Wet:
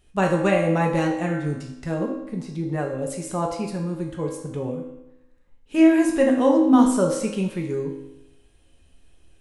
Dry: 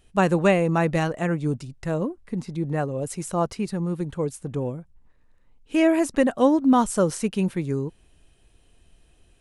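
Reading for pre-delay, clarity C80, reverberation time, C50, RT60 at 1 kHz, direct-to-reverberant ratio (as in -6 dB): 4 ms, 8.0 dB, 0.90 s, 5.5 dB, 0.90 s, 0.0 dB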